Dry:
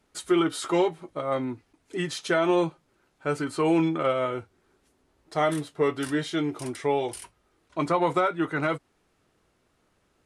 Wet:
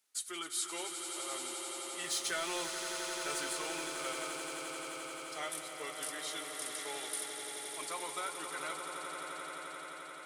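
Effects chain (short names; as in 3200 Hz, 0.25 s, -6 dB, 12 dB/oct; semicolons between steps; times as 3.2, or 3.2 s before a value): differentiator; 2.04–3.53 power-law curve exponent 0.7; swelling echo 87 ms, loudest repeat 8, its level -10 dB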